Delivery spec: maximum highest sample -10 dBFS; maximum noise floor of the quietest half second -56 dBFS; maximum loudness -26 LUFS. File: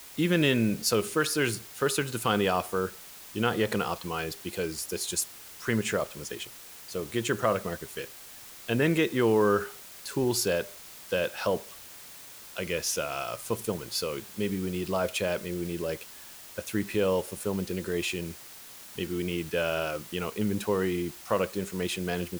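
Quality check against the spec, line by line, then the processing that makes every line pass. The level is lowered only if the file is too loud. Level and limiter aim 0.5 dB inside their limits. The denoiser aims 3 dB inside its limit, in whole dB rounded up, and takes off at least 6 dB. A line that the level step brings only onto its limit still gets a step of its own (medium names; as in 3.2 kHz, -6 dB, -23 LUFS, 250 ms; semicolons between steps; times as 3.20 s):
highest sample -11.5 dBFS: pass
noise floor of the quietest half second -47 dBFS: fail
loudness -29.5 LUFS: pass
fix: noise reduction 12 dB, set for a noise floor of -47 dBFS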